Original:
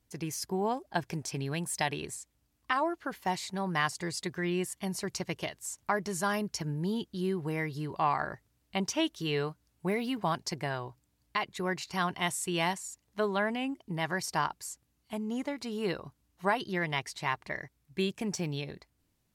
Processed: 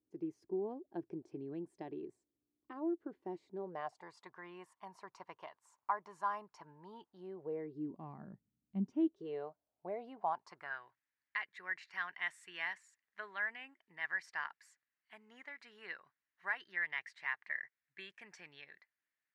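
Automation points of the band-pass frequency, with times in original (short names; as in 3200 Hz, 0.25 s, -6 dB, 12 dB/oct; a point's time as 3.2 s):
band-pass, Q 4.5
3.51 s 340 Hz
4.1 s 1000 Hz
7.02 s 1000 Hz
8.1 s 200 Hz
8.78 s 200 Hz
9.41 s 650 Hz
10.12 s 650 Hz
10.84 s 1800 Hz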